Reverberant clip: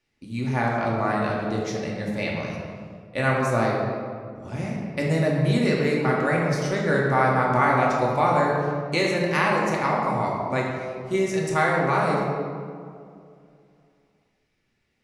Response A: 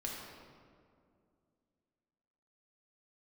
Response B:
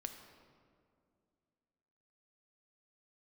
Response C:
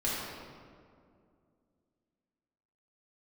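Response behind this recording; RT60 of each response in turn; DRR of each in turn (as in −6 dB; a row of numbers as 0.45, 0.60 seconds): A; 2.3, 2.3, 2.3 seconds; −3.5, 5.5, −8.5 decibels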